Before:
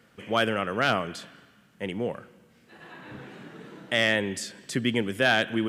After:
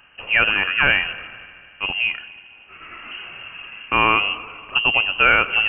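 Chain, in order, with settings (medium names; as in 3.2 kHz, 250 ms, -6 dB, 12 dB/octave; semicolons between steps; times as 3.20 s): wow and flutter 38 cents; multi-head delay 77 ms, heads first and third, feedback 67%, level -23 dB; frequency inversion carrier 3 kHz; trim +7.5 dB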